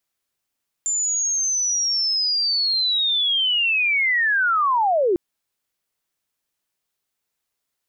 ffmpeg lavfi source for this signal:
-f lavfi -i "aevalsrc='pow(10,(-19.5+4*t/4.3)/20)*sin(2*PI*(7200*t-6870*t*t/(2*4.3)))':d=4.3:s=44100"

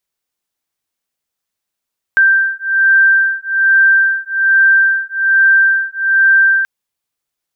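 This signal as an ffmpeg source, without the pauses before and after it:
-f lavfi -i "aevalsrc='0.266*(sin(2*PI*1570*t)+sin(2*PI*1571.2*t))':d=4.48:s=44100"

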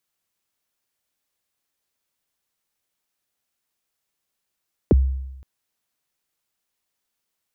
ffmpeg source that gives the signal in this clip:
-f lavfi -i "aevalsrc='0.355*pow(10,-3*t/0.97)*sin(2*PI*(530*0.025/log(66/530)*(exp(log(66/530)*min(t,0.025)/0.025)-1)+66*max(t-0.025,0)))':d=0.52:s=44100"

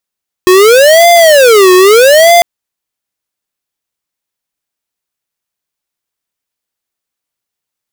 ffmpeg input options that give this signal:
-f lavfi -i "aevalsrc='0.668*(2*lt(mod((528.5*t-163.5/(2*PI*0.79)*sin(2*PI*0.79*t)),1),0.5)-1)':d=1.95:s=44100"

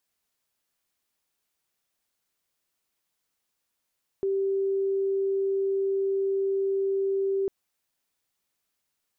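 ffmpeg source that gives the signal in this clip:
-f lavfi -i "sine=f=390:d=3.25:r=44100,volume=-4.94dB"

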